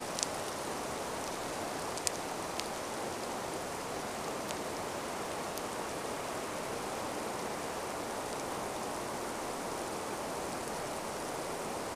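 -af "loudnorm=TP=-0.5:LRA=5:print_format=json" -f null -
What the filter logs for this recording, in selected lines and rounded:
"input_i" : "-37.8",
"input_tp" : "-4.6",
"input_lra" : "0.7",
"input_thresh" : "-47.8",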